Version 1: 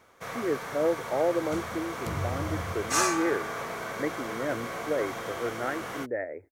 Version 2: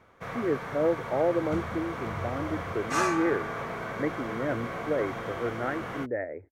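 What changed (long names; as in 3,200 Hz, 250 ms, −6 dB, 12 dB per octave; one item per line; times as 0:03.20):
second sound −11.0 dB
master: add bass and treble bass +6 dB, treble −12 dB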